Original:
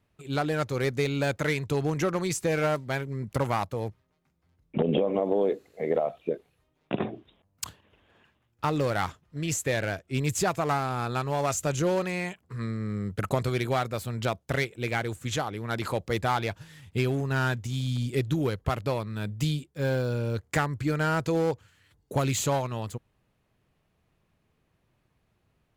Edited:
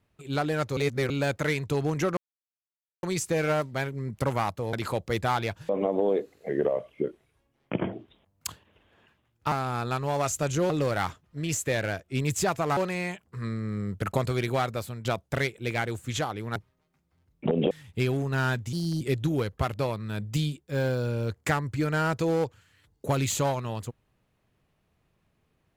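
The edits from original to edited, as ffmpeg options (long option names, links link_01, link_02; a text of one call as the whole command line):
ffmpeg -i in.wav -filter_complex "[0:a]asplit=16[link_01][link_02][link_03][link_04][link_05][link_06][link_07][link_08][link_09][link_10][link_11][link_12][link_13][link_14][link_15][link_16];[link_01]atrim=end=0.772[link_17];[link_02]atrim=start=0.768:end=1.102,asetpts=PTS-STARTPTS,areverse[link_18];[link_03]atrim=start=1.098:end=2.17,asetpts=PTS-STARTPTS,afade=type=out:start_time=1.068:duration=0.004:curve=hsin,apad=pad_dur=0.86[link_19];[link_04]atrim=start=2.17:end=3.872,asetpts=PTS-STARTPTS,afade=type=in:duration=0.004:curve=hsin[link_20];[link_05]atrim=start=15.728:end=16.692[link_21];[link_06]atrim=start=5.018:end=5.824[link_22];[link_07]atrim=start=5.82:end=7.1,asetpts=PTS-STARTPTS,asetrate=39249,aresample=44100[link_23];[link_08]atrim=start=7.096:end=8.692[link_24];[link_09]atrim=start=10.758:end=11.942[link_25];[link_10]atrim=start=8.688:end=10.762[link_26];[link_11]atrim=start=11.938:end=14.22,asetpts=PTS-STARTPTS,afade=type=out:start_time=2.002:duration=0.28:silence=0.354813[link_27];[link_12]atrim=start=14.22:end=15.732,asetpts=PTS-STARTPTS,afade=type=in:duration=0.004:curve=hsin:silence=0.354813[link_28];[link_13]atrim=start=3.868:end=5.022[link_29];[link_14]atrim=start=16.688:end=17.714[link_30];[link_15]atrim=start=17.71:end=18.08,asetpts=PTS-STARTPTS,asetrate=57771,aresample=44100[link_31];[link_16]atrim=start=18.076[link_32];[link_17][link_18]acrossfade=duration=0.004:curve1=hsin:curve2=hsin[link_33];[link_19][link_20]concat=n=2:v=0:a=1[link_34];[link_33][link_34]acrossfade=duration=0.004:curve1=hsin:curve2=hsin[link_35];[link_35][link_21]acrossfade=duration=0.004:curve1=hsin:curve2=hsin[link_36];[link_36][link_22]acrossfade=duration=0.004:curve1=hsin:curve2=hsin[link_37];[link_37][link_23]acrossfade=duration=0.004:curve1=hsin:curve2=hsin[link_38];[link_38][link_24]acrossfade=duration=0.004:curve1=hsin:curve2=hsin[link_39];[link_39][link_25]acrossfade=duration=0.004:curve1=hsin:curve2=hsin[link_40];[link_40][link_26]acrossfade=duration=0.004:curve1=hsin:curve2=hsin[link_41];[link_27][link_28]concat=n=2:v=0:a=1[link_42];[link_41][link_42]acrossfade=duration=0.004:curve1=hsin:curve2=hsin[link_43];[link_43][link_29]acrossfade=duration=0.004:curve1=hsin:curve2=hsin[link_44];[link_44][link_30]acrossfade=duration=0.004:curve1=hsin:curve2=hsin[link_45];[link_45][link_31]acrossfade=duration=0.004:curve1=hsin:curve2=hsin[link_46];[link_46][link_32]acrossfade=duration=0.004:curve1=hsin:curve2=hsin" out.wav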